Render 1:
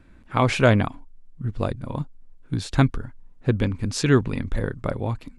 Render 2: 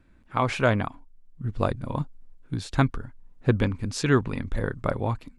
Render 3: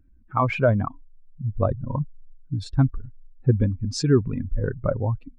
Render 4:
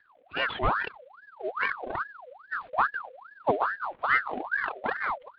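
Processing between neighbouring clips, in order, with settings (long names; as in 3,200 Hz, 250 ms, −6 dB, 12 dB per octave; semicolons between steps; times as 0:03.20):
dynamic equaliser 1,100 Hz, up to +5 dB, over −36 dBFS, Q 0.87; automatic gain control; level −7 dB
expanding power law on the bin magnitudes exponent 2; level +3 dB
variable-slope delta modulation 16 kbit/s; ring modulator whose carrier an LFO sweeps 1,100 Hz, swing 55%, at 2.4 Hz; level −3 dB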